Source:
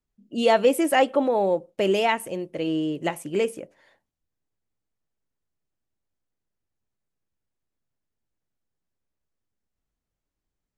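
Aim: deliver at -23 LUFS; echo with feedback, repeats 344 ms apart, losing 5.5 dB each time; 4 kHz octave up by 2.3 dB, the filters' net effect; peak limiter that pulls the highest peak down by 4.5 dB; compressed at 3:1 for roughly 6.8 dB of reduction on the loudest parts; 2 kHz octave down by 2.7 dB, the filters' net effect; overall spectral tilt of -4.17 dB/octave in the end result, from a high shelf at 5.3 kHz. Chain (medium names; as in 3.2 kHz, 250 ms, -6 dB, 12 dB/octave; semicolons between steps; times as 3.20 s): peaking EQ 2 kHz -5.5 dB; peaking EQ 4 kHz +4.5 dB; treble shelf 5.3 kHz +6 dB; compression 3:1, threshold -23 dBFS; peak limiter -18.5 dBFS; feedback delay 344 ms, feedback 53%, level -5.5 dB; trim +5 dB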